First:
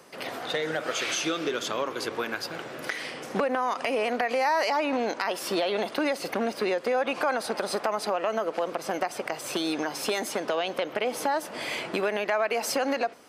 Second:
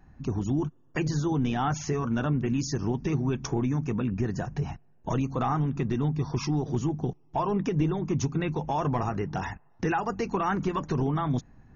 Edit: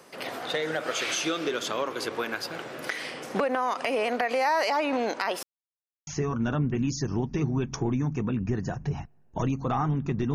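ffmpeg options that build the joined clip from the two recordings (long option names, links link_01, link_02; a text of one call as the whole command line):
ffmpeg -i cue0.wav -i cue1.wav -filter_complex "[0:a]apad=whole_dur=10.34,atrim=end=10.34,asplit=2[link_01][link_02];[link_01]atrim=end=5.43,asetpts=PTS-STARTPTS,afade=type=out:start_time=5.426:duration=0.004:curve=hsin[link_03];[link_02]atrim=start=5.43:end=6.07,asetpts=PTS-STARTPTS,volume=0[link_04];[1:a]atrim=start=1.78:end=6.05,asetpts=PTS-STARTPTS,afade=type=in:duration=0.004:curve=hsin[link_05];[link_03][link_04][link_05]concat=n=3:v=0:a=1" out.wav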